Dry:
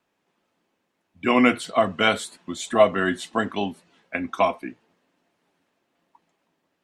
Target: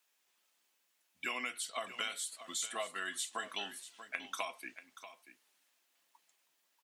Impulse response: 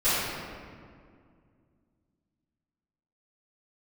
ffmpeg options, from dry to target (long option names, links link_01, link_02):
-filter_complex "[0:a]aderivative,acompressor=threshold=-42dB:ratio=16,asplit=2[link_01][link_02];[link_02]aecho=0:1:636:0.224[link_03];[link_01][link_03]amix=inputs=2:normalize=0,volume=7dB"